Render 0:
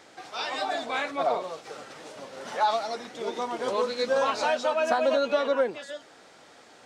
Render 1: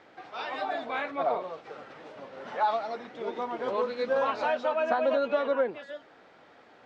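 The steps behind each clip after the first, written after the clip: low-pass 2.6 kHz 12 dB/octave; trim -2 dB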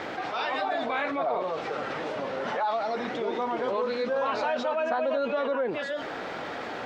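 level flattener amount 70%; trim -3.5 dB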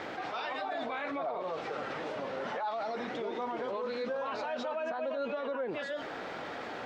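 peak limiter -22.5 dBFS, peak gain reduction 8.5 dB; trim -5 dB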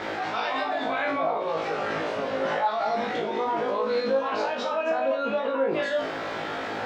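flutter echo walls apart 3.2 m, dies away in 0.38 s; trim +6 dB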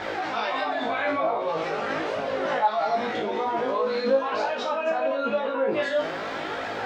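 flange 0.45 Hz, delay 1.1 ms, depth 9.3 ms, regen +44%; trim +4.5 dB

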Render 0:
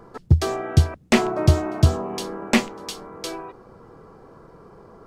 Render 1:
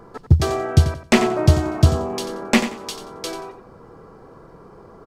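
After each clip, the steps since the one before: feedback delay 90 ms, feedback 24%, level -11 dB; trim +2 dB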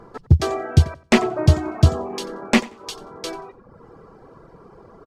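treble shelf 10 kHz -9 dB; reverb removal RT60 0.65 s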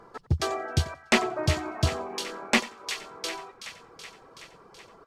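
bass shelf 490 Hz -11 dB; feedback echo behind a high-pass 376 ms, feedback 67%, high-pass 1.4 kHz, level -10.5 dB; trim -1.5 dB

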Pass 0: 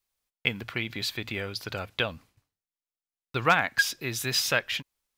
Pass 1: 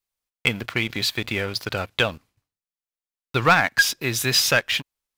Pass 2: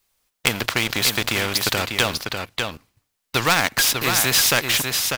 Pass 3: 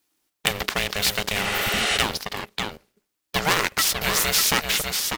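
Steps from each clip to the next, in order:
waveshaping leveller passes 2
delay 596 ms -10 dB; spectrum-flattening compressor 2:1; trim +4 dB
ring modulator 310 Hz; spectral replace 1.47–1.94 s, 290–11000 Hz both

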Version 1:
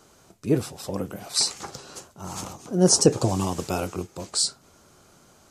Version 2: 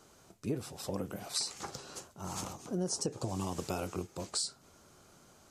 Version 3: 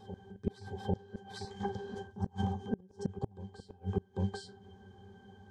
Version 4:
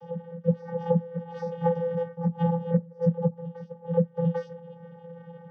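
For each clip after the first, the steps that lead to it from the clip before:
compression 10:1, threshold -26 dBFS, peak gain reduction 16 dB; trim -5 dB
pitch-class resonator G, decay 0.14 s; inverted gate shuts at -37 dBFS, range -32 dB; reverse echo 796 ms -12.5 dB; trim +17 dB
reverberation, pre-delay 3 ms, DRR -1.5 dB; vocoder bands 16, square 169 Hz

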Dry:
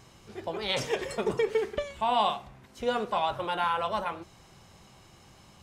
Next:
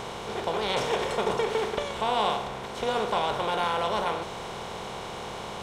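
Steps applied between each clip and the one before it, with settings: spectral levelling over time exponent 0.4; trim -4 dB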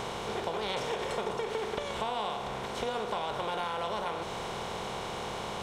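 compression, threshold -30 dBFS, peak gain reduction 9 dB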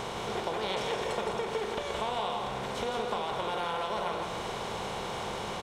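delay 168 ms -5.5 dB

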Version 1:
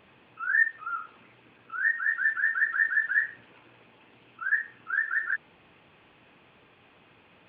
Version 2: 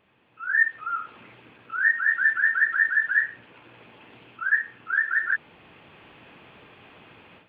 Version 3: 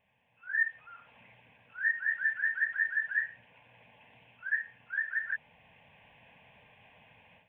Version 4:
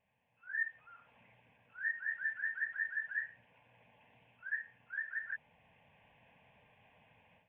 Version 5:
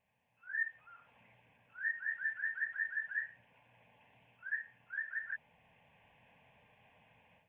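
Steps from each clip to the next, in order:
level rider gain up to 15.5 dB; trim -7.5 dB
static phaser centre 1.3 kHz, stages 6; trim -6.5 dB
treble shelf 2.7 kHz -7.5 dB; trim -5 dB
de-hum 47.87 Hz, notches 14

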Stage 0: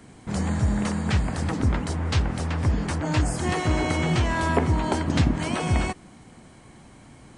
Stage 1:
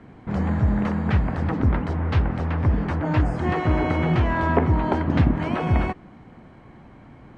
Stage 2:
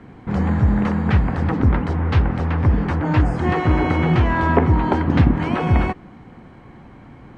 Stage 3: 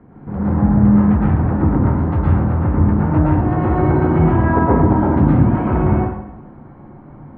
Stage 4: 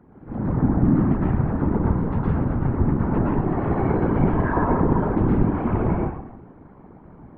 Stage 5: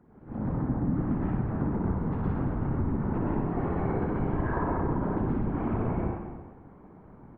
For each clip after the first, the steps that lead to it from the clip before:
low-pass 2 kHz 12 dB/octave; trim +2.5 dB
band-stop 630 Hz, Q 12; trim +4 dB
low-pass 1.1 kHz 12 dB/octave; plate-style reverb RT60 0.86 s, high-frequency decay 0.85×, pre-delay 100 ms, DRR -6.5 dB; trim -3.5 dB
whisper effect; trim -6 dB
compression, threshold -19 dBFS, peak gain reduction 7 dB; on a send: reverse bouncing-ball echo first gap 60 ms, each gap 1.2×, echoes 5; on the sum: trim -7 dB

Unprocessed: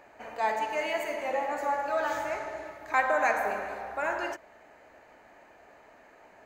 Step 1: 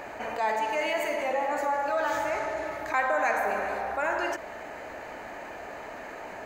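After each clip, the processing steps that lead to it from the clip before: level flattener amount 50%; trim -2 dB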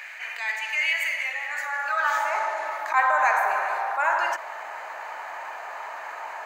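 high-pass sweep 2.1 kHz -> 980 Hz, 1.44–2.35 s; attacks held to a fixed rise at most 190 dB/s; trim +2.5 dB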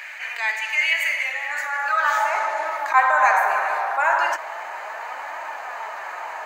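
flange 0.37 Hz, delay 3 ms, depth 4.6 ms, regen +65%; trim +8 dB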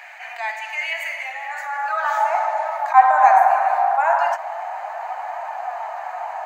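resonant high-pass 730 Hz, resonance Q 8.2; trim -6.5 dB

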